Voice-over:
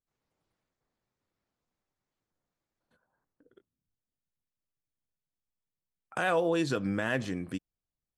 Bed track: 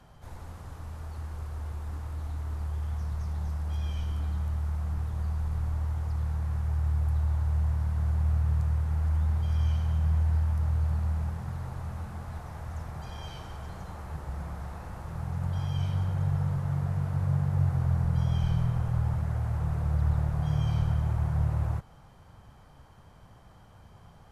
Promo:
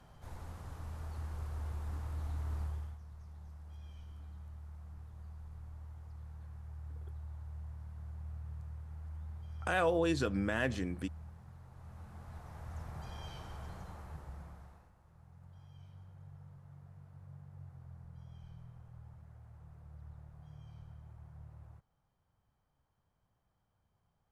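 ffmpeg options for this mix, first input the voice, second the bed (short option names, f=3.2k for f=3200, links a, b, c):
-filter_complex "[0:a]adelay=3500,volume=-3dB[a];[1:a]volume=8.5dB,afade=t=out:st=2.59:d=0.39:silence=0.188365,afade=t=in:st=11.69:d=1.32:silence=0.237137,afade=t=out:st=13.66:d=1.27:silence=0.105925[b];[a][b]amix=inputs=2:normalize=0"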